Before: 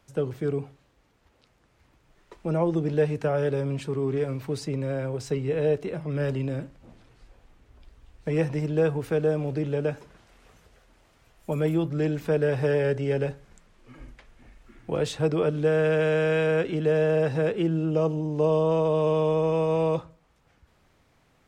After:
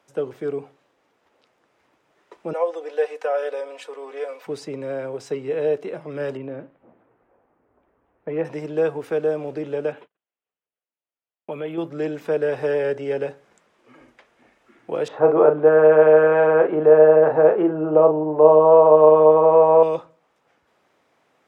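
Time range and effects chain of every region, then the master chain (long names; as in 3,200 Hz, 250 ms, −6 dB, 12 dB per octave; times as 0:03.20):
0:02.53–0:04.47: Chebyshev high-pass filter 530 Hz, order 3 + comb filter 4 ms, depth 68%
0:06.37–0:08.45: high-frequency loss of the air 440 metres + low-pass that shuts in the quiet parts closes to 1,300 Hz, open at −27 dBFS
0:09.92–0:11.78: noise gate −49 dBFS, range −40 dB + high shelf with overshoot 4,200 Hz −10 dB, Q 3 + downward compressor 2.5 to 1, threshold −27 dBFS
0:15.08–0:19.83: low-pass filter 1,300 Hz + parametric band 920 Hz +12 dB 2.3 octaves + double-tracking delay 39 ms −6.5 dB
whole clip: high-pass filter 430 Hz 12 dB per octave; spectral tilt −2 dB per octave; notch filter 4,300 Hz, Q 21; level +3 dB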